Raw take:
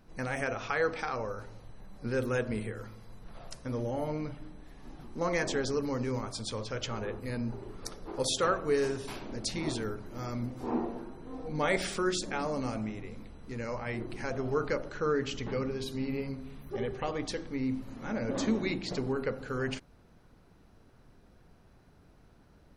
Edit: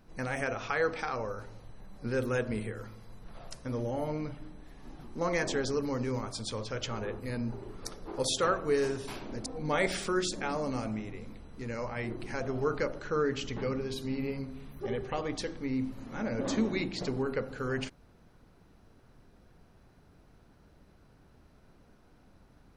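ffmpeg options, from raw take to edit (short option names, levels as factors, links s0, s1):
-filter_complex "[0:a]asplit=2[s0][s1];[s0]atrim=end=9.462[s2];[s1]atrim=start=11.358[s3];[s2][s3]acrossfade=d=0.004:c1=hsin:c2=hsin"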